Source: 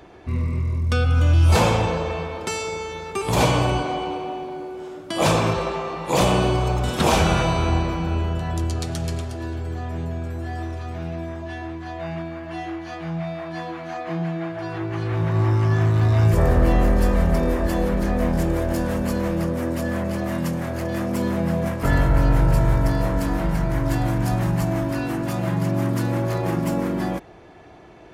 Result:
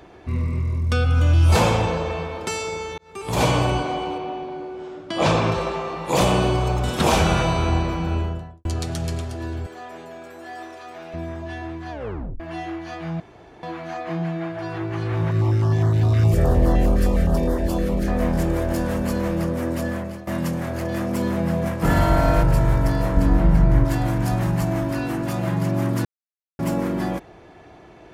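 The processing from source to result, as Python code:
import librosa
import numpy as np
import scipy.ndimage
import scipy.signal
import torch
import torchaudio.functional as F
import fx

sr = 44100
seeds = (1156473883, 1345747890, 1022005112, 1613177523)

y = fx.lowpass(x, sr, hz=5300.0, slope=12, at=(4.18, 5.52))
y = fx.studio_fade_out(y, sr, start_s=8.14, length_s=0.51)
y = fx.highpass(y, sr, hz=460.0, slope=12, at=(9.66, 11.14))
y = fx.filter_held_notch(y, sr, hz=9.7, low_hz=860.0, high_hz=2500.0, at=(15.31, 18.08))
y = fx.room_flutter(y, sr, wall_m=9.4, rt60_s=1.4, at=(21.81, 22.42), fade=0.02)
y = fx.tilt_eq(y, sr, slope=-2.0, at=(23.17, 23.85))
y = fx.edit(y, sr, fx.fade_in_span(start_s=2.98, length_s=0.51),
    fx.tape_stop(start_s=11.91, length_s=0.49),
    fx.room_tone_fill(start_s=13.2, length_s=0.43),
    fx.fade_out_to(start_s=19.84, length_s=0.43, floor_db=-17.0),
    fx.silence(start_s=26.05, length_s=0.54), tone=tone)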